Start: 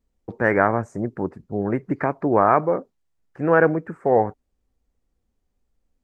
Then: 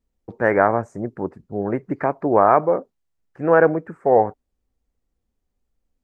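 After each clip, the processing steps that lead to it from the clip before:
dynamic equaliser 650 Hz, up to +6 dB, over −29 dBFS, Q 0.74
level −2.5 dB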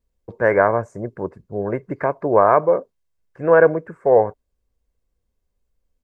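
comb filter 1.9 ms, depth 40%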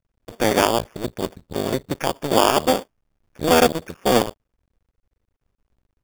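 sub-harmonics by changed cycles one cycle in 2, muted
in parallel at −2 dB: downward compressor, threshold −25 dBFS, peak gain reduction 15 dB
on the sum: decimation without filtering 11×
level −1 dB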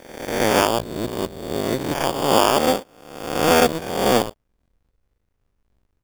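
peak hold with a rise ahead of every peak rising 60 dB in 0.93 s
level −2 dB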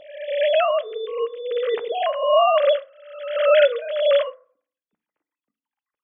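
three sine waves on the formant tracks
feedback delay network reverb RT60 0.5 s, low-frequency decay 1.5×, high-frequency decay 0.35×, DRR 13.5 dB

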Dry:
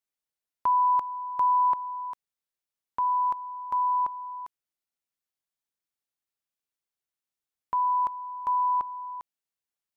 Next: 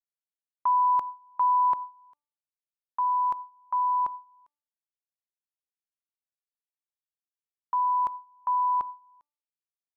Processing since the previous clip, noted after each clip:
hum removal 294.1 Hz, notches 4
noise gate with hold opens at −26 dBFS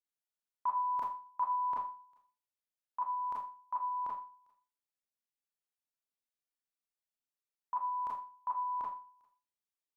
four-comb reverb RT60 0.34 s, combs from 26 ms, DRR −4.5 dB
level −8.5 dB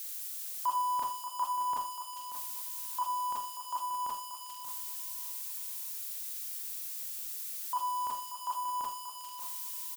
spike at every zero crossing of −35 dBFS
on a send: repeating echo 584 ms, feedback 28%, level −10.5 dB
on the sum: level +2 dB

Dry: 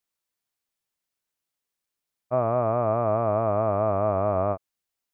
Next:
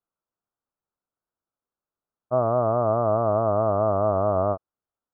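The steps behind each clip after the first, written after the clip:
elliptic low-pass filter 1,400 Hz, stop band 70 dB
level +2 dB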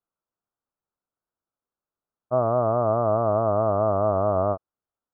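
no processing that can be heard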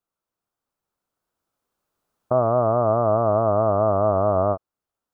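camcorder AGC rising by 5.5 dB per second
level +2.5 dB

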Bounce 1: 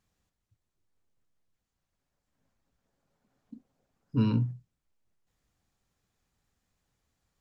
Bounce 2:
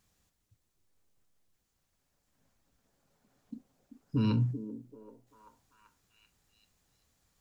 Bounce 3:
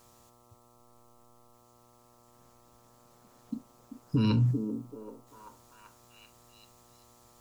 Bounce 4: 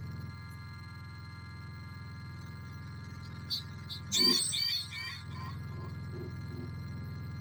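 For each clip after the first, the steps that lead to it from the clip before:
high-shelf EQ 4,400 Hz +7 dB; brickwall limiter −23.5 dBFS, peak gain reduction 8 dB; echo through a band-pass that steps 387 ms, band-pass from 340 Hz, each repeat 0.7 octaves, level −7 dB; level +3 dB
high-shelf EQ 3,900 Hz +7 dB; brickwall limiter −26 dBFS, peak gain reduction 6 dB; hum with harmonics 120 Hz, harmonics 11, −70 dBFS −1 dB per octave; level +7.5 dB
frequency axis turned over on the octave scale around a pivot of 1,000 Hz; phaser with its sweep stopped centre 2,800 Hz, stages 6; power curve on the samples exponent 0.7; level +4 dB

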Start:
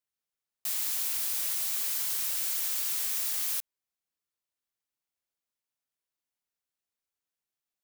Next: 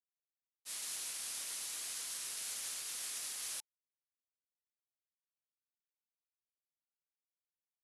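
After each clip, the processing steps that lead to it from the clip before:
elliptic low-pass filter 11,000 Hz, stop band 60 dB
notch filter 870 Hz, Q 20
downward expander −28 dBFS
level +5 dB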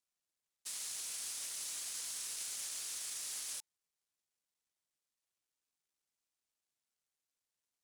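running median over 3 samples
parametric band 8,100 Hz +7.5 dB 1.6 octaves
brickwall limiter −38 dBFS, peak gain reduction 11 dB
level +4.5 dB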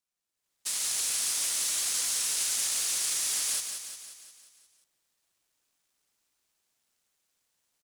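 on a send: repeating echo 177 ms, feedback 57%, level −7 dB
on the sum: automatic gain control gain up to 12 dB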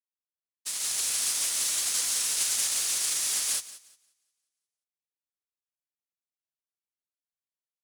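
expander for the loud parts 2.5 to 1, over −48 dBFS
level +3.5 dB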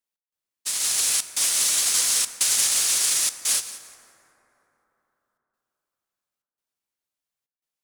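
gate pattern "xx..xxxxxxxxx" 187 BPM −60 dB
dense smooth reverb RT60 3.8 s, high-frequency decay 0.35×, DRR 11 dB
level +6.5 dB

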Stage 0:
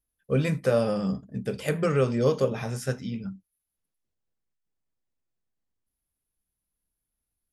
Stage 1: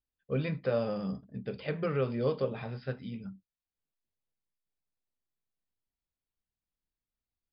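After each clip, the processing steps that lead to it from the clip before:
Chebyshev low-pass filter 5,000 Hz, order 10
level −6.5 dB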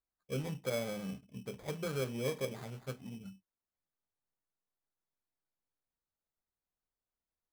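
sample-rate reduction 2,800 Hz, jitter 0%
level −6 dB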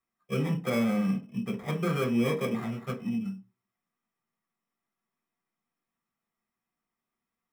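convolution reverb RT60 0.40 s, pre-delay 3 ms, DRR 1.5 dB

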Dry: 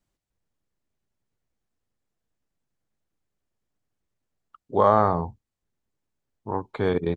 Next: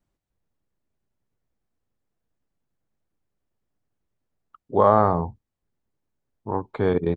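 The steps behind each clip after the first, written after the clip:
high-shelf EQ 2,200 Hz −8.5 dB
level +2.5 dB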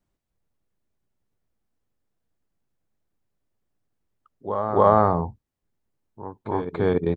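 backwards echo 287 ms −10 dB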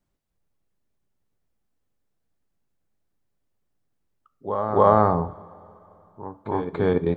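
coupled-rooms reverb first 0.4 s, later 3.1 s, from −16 dB, DRR 12 dB

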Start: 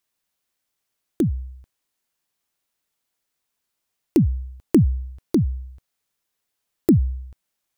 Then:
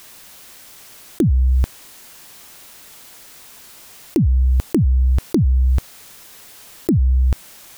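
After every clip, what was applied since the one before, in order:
envelope flattener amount 100%
level −3.5 dB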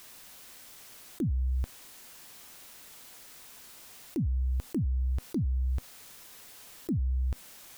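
brickwall limiter −16.5 dBFS, peak gain reduction 10 dB
tuned comb filter 250 Hz, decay 0.19 s, harmonics all, mix 40%
level −4.5 dB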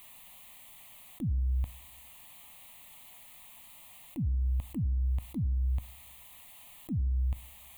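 phaser with its sweep stopped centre 1,500 Hz, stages 6
on a send at −18.5 dB: convolution reverb RT60 0.75 s, pre-delay 3 ms

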